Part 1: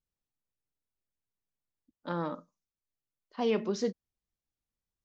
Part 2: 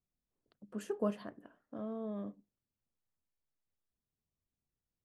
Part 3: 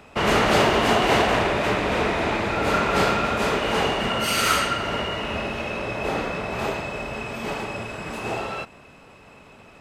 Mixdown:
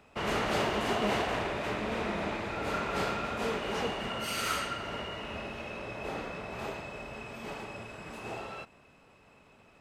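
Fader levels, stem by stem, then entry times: −9.0, 0.0, −11.5 decibels; 0.00, 0.00, 0.00 seconds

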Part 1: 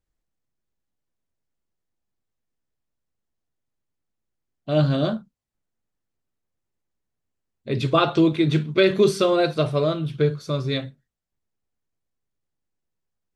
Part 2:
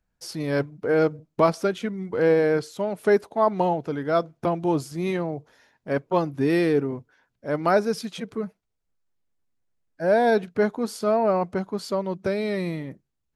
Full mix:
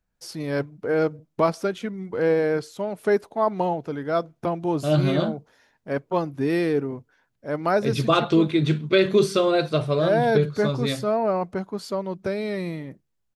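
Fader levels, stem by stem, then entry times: −1.0, −1.5 decibels; 0.15, 0.00 seconds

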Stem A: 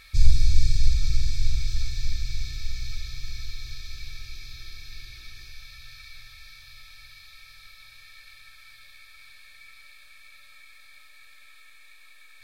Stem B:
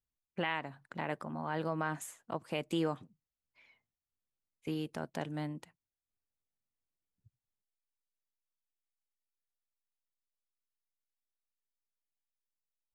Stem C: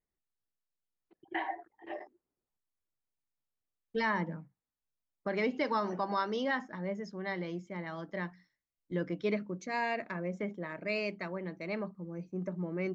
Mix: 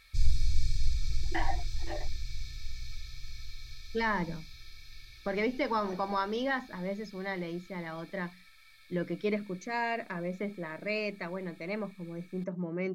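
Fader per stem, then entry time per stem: −8.5 dB, muted, +1.0 dB; 0.00 s, muted, 0.00 s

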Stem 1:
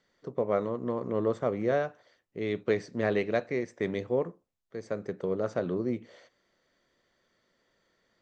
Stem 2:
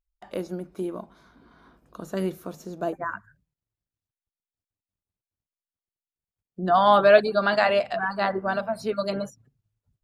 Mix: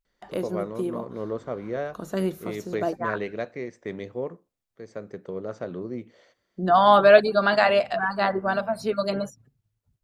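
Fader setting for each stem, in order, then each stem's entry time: −3.0, +1.5 decibels; 0.05, 0.00 seconds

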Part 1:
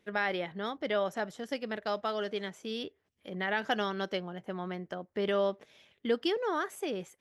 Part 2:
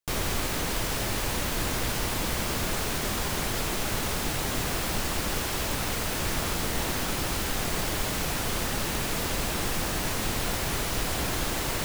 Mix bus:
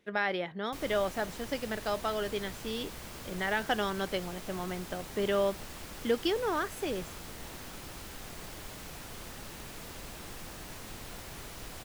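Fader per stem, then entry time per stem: +0.5, −15.5 decibels; 0.00, 0.65 seconds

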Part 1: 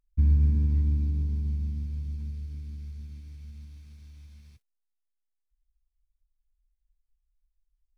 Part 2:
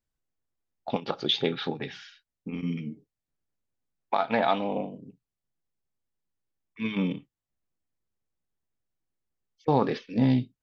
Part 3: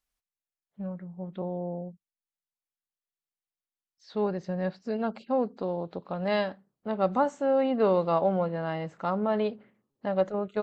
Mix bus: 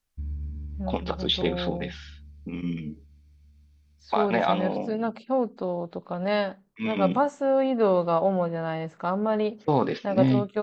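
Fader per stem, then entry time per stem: −12.5, +0.5, +2.0 decibels; 0.00, 0.00, 0.00 seconds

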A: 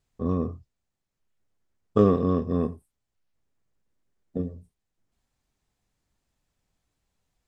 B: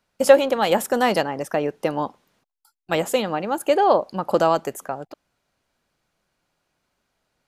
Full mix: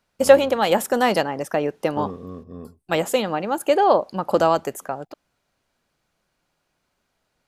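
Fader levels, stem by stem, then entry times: −12.5, +0.5 decibels; 0.00, 0.00 seconds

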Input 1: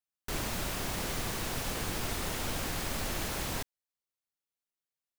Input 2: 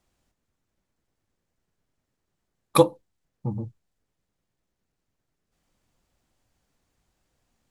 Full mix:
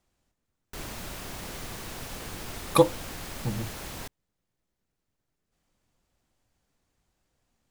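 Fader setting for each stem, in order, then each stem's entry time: −4.0, −2.0 decibels; 0.45, 0.00 seconds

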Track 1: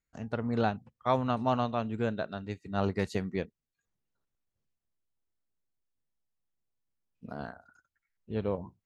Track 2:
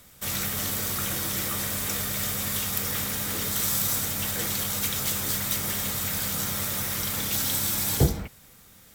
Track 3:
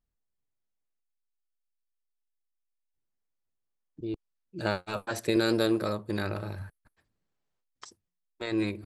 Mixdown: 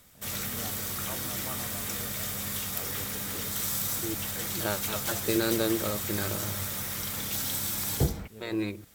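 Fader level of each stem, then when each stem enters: −16.0, −5.0, −2.0 decibels; 0.00, 0.00, 0.00 seconds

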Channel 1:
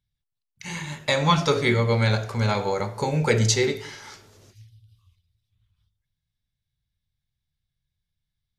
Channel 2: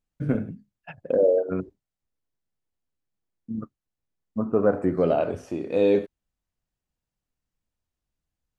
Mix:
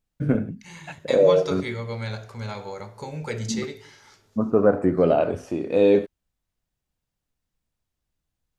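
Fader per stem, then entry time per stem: −10.0, +3.0 decibels; 0.00, 0.00 seconds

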